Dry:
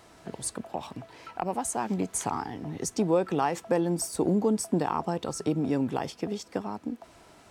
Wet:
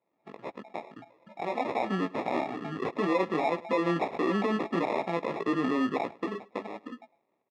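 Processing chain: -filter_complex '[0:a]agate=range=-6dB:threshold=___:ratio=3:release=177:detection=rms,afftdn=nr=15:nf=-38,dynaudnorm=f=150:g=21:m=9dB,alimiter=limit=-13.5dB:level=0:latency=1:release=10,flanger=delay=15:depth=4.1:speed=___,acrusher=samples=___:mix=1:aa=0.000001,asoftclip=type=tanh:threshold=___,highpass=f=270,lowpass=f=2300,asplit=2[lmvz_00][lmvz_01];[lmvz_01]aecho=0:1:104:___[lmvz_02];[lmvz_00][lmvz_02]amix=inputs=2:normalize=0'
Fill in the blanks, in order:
-50dB, 1.6, 29, -15.5dB, 0.0841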